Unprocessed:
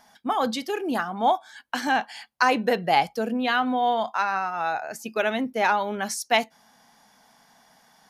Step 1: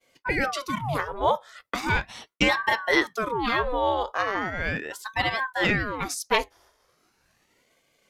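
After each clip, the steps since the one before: expander -51 dBFS; ring modulator with a swept carrier 760 Hz, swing 80%, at 0.38 Hz; trim +1.5 dB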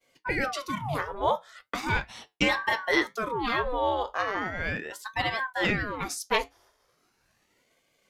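flange 0.58 Hz, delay 6.6 ms, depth 5.2 ms, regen -71%; trim +1.5 dB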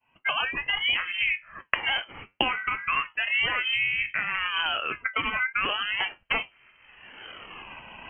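recorder AGC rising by 37 dB/s; frequency inversion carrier 3.1 kHz; trim -3 dB

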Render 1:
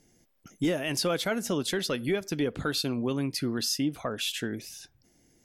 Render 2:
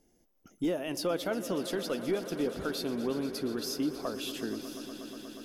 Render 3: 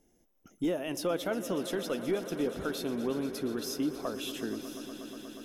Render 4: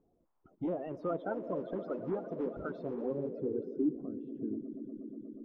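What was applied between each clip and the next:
graphic EQ 125/2000/4000/8000 Hz -11/-8/-4/-8 dB; on a send: echo with a slow build-up 120 ms, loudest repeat 5, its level -16 dB; on the sum: trim -1.5 dB
band-stop 4.6 kHz, Q 5.8
coarse spectral quantiser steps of 30 dB; low-pass sweep 970 Hz -> 290 Hz, 2.92–4.03 s; trim -5 dB

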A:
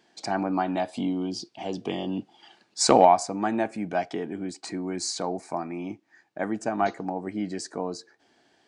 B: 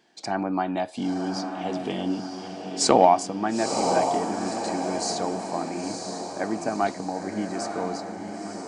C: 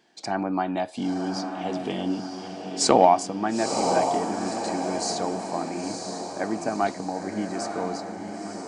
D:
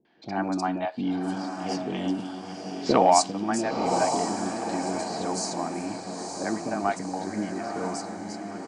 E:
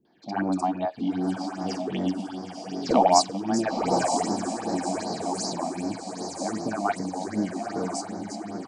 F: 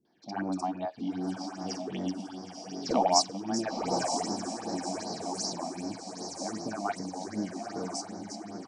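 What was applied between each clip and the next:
echo that smears into a reverb 956 ms, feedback 50%, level -5 dB
no audible change
three bands offset in time lows, mids, highs 50/350 ms, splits 530/4000 Hz
phase shifter stages 6, 2.6 Hz, lowest notch 100–2900 Hz; trim +2.5 dB
peaking EQ 5.6 kHz +10 dB 0.3 oct; trim -6.5 dB

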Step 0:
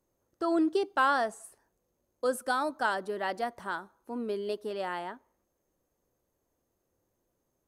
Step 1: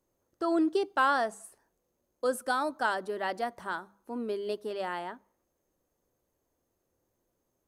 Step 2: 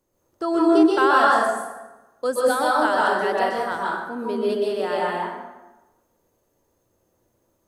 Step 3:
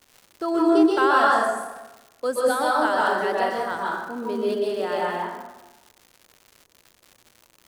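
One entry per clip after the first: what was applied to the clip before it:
hum notches 50/100/150/200 Hz
plate-style reverb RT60 1.1 s, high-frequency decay 0.65×, pre-delay 115 ms, DRR -4.5 dB; trim +4.5 dB
crackle 250 per s -36 dBFS; trim -1.5 dB

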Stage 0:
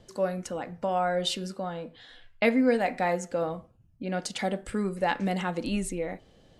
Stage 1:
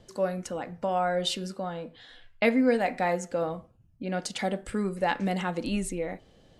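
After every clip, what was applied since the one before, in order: no audible change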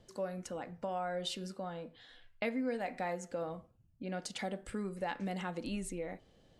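compression 2:1, threshold -29 dBFS, peak gain reduction 6.5 dB; trim -7 dB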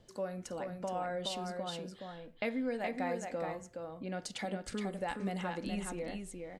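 delay 420 ms -5 dB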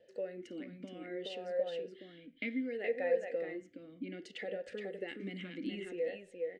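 talking filter e-i 0.64 Hz; trim +10 dB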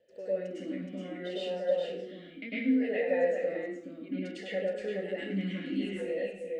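plate-style reverb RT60 0.58 s, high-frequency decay 0.8×, pre-delay 90 ms, DRR -9.5 dB; trim -4.5 dB

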